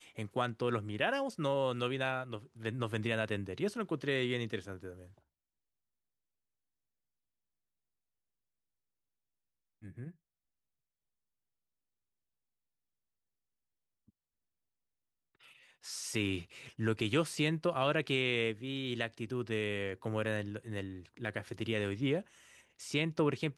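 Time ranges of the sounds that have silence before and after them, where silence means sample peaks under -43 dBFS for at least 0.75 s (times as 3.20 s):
9.84–10.09 s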